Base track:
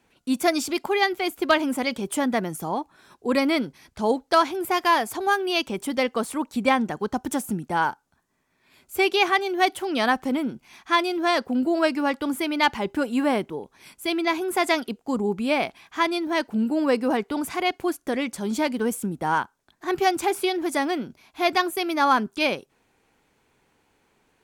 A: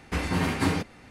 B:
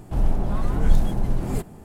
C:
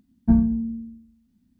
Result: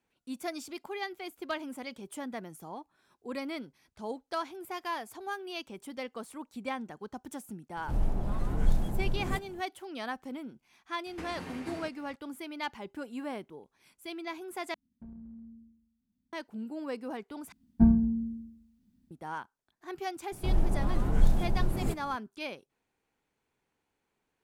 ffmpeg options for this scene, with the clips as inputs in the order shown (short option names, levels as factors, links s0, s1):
-filter_complex "[2:a]asplit=2[s0][s1];[3:a]asplit=2[s2][s3];[0:a]volume=0.168[s4];[1:a]acrossover=split=220|670[s5][s6][s7];[s5]acompressor=threshold=0.00708:ratio=4[s8];[s6]acompressor=threshold=0.0158:ratio=4[s9];[s7]acompressor=threshold=0.0112:ratio=4[s10];[s8][s9][s10]amix=inputs=3:normalize=0[s11];[s2]acompressor=threshold=0.0355:ratio=6:attack=0.37:release=83:knee=6:detection=peak[s12];[s4]asplit=3[s13][s14][s15];[s13]atrim=end=14.744[s16];[s12]atrim=end=1.59,asetpts=PTS-STARTPTS,volume=0.168[s17];[s14]atrim=start=16.326:end=17.524[s18];[s3]atrim=end=1.59,asetpts=PTS-STARTPTS,volume=0.668[s19];[s15]atrim=start=19.106[s20];[s0]atrim=end=1.84,asetpts=PTS-STARTPTS,volume=0.398,afade=t=in:d=0.004:c=hsin,afade=t=out:st=1.836:d=0.004:c=hsin,adelay=7770[s21];[s11]atrim=end=1.1,asetpts=PTS-STARTPTS,volume=0.398,afade=t=in:d=0.004:c=hsin,afade=t=out:st=1.096:d=0.004:c=hsin,adelay=487746S[s22];[s1]atrim=end=1.84,asetpts=PTS-STARTPTS,volume=0.531,afade=t=in:d=0.004:c=hsin,afade=t=out:st=1.836:d=0.004:c=hsin,adelay=20320[s23];[s16][s17]acrossfade=d=0.004:c1=hsin:c2=hsin[s24];[s24][s18]acrossfade=d=0.004:c1=hsin:c2=hsin[s25];[s25][s19]acrossfade=d=0.004:c1=hsin:c2=hsin[s26];[s26][s20]acrossfade=d=0.004:c1=hsin:c2=hsin[s27];[s27][s21][s22][s23]amix=inputs=4:normalize=0"